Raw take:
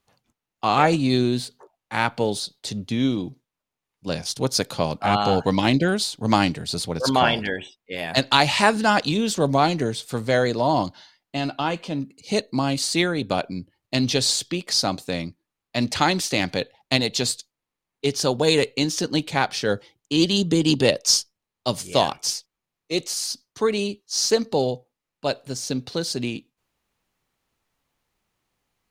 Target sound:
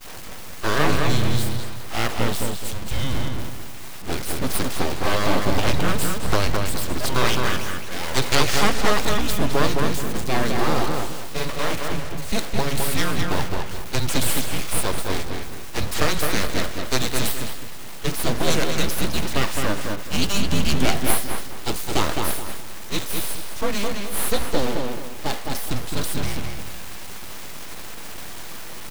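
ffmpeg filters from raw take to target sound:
-filter_complex "[0:a]aeval=exprs='val(0)+0.5*0.0944*sgn(val(0))':c=same,afreqshift=-200,agate=range=-33dB:threshold=-20dB:ratio=3:detection=peak,aeval=exprs='abs(val(0))':c=same,asplit=2[a][b];[b]adelay=212,lowpass=f=3.8k:p=1,volume=-3.5dB,asplit=2[c][d];[d]adelay=212,lowpass=f=3.8k:p=1,volume=0.32,asplit=2[e][f];[f]adelay=212,lowpass=f=3.8k:p=1,volume=0.32,asplit=2[g][h];[h]adelay=212,lowpass=f=3.8k:p=1,volume=0.32[i];[c][e][g][i]amix=inputs=4:normalize=0[j];[a][j]amix=inputs=2:normalize=0,volume=-1.5dB"

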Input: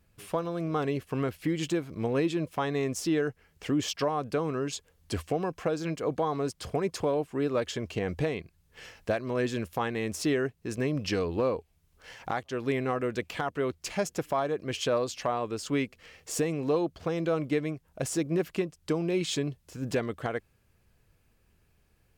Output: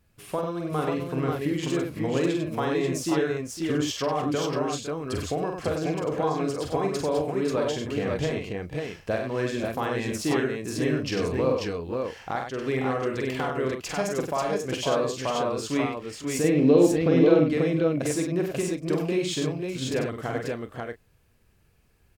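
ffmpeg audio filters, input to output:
-filter_complex "[0:a]asettb=1/sr,asplit=3[a][b][c];[a]atrim=end=16.444[d];[b]atrim=start=16.44:end=17.5,asetpts=PTS-STARTPTS,afade=t=in:d=0.004:c=qsin,afade=t=out:st=1.056:d=0.004:c=qsin,equalizer=f=125:t=o:w=1:g=4,equalizer=f=250:t=o:w=1:g=11,equalizer=f=500:t=o:w=1:g=5,equalizer=f=1k:t=o:w=1:g=-5,equalizer=f=2k:t=o:w=1:g=6,equalizer=f=4k:t=o:w=1:g=5,equalizer=f=8k:t=o:w=1:g=-10[e];[c]atrim=start=17.496[f];[d][e]acrossfade=d=0.004:c1=hsin:c2=qsin[g];[g][f]acrossfade=d=0.004:c1=qsin:c2=hsin,asplit=2[h][i];[i]aecho=0:1:46|96|507|538|572:0.596|0.501|0.224|0.708|0.178[j];[h][j]amix=inputs=2:normalize=0"

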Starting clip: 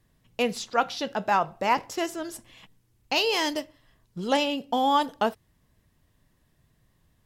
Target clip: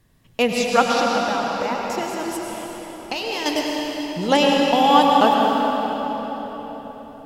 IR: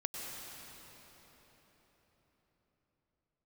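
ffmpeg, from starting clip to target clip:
-filter_complex "[0:a]asettb=1/sr,asplit=3[a][b][c];[a]atrim=end=0.994[d];[b]atrim=start=0.99:end=3.46,asetpts=PTS-STARTPTS,afade=t=in:d=0.004:c=qsin,afade=t=out:st=2.466:d=0.004:c=qsin,acompressor=threshold=-32dB:ratio=6[e];[c]atrim=start=3.456[f];[d][e]acrossfade=d=0.004:c1=hsin:c2=qsin[g];[g][f]acrossfade=d=0.004:c1=qsin:c2=hsin[h];[1:a]atrim=start_sample=2205[i];[h][i]afir=irnorm=-1:irlink=0,volume=8dB"

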